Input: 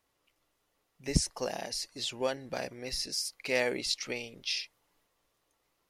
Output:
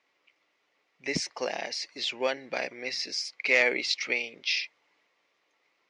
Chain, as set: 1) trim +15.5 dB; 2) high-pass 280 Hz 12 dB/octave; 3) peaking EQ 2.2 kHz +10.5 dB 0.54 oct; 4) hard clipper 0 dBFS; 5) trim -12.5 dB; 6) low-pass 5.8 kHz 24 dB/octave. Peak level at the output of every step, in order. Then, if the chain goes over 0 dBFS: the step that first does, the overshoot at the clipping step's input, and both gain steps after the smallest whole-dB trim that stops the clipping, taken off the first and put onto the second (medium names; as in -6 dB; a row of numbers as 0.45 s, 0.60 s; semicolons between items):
+6.5 dBFS, +2.0 dBFS, +5.0 dBFS, 0.0 dBFS, -12.5 dBFS, -11.5 dBFS; step 1, 5.0 dB; step 1 +10.5 dB, step 5 -7.5 dB